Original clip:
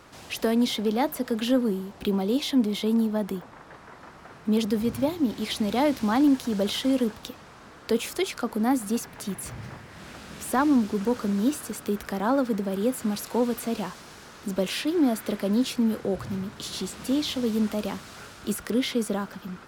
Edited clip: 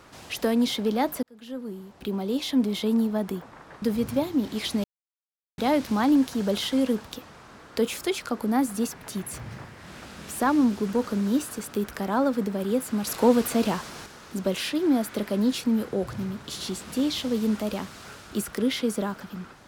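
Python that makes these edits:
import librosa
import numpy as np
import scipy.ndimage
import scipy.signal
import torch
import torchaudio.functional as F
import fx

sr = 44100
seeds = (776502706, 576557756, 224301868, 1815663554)

y = fx.edit(x, sr, fx.fade_in_span(start_s=1.23, length_s=1.45),
    fx.cut(start_s=3.82, length_s=0.86),
    fx.insert_silence(at_s=5.7, length_s=0.74),
    fx.clip_gain(start_s=13.19, length_s=0.99, db=5.5), tone=tone)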